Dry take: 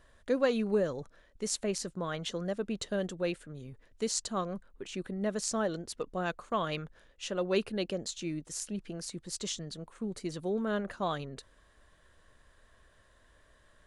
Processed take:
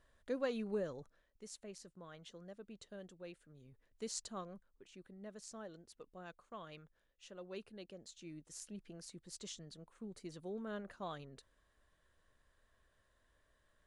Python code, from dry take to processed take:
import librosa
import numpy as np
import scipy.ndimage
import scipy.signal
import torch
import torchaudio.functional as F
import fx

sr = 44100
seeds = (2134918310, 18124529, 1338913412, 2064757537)

y = fx.gain(x, sr, db=fx.line((0.97, -10.0), (1.49, -18.5), (3.28, -18.5), (4.19, -10.0), (4.88, -18.5), (7.94, -18.5), (8.57, -12.0)))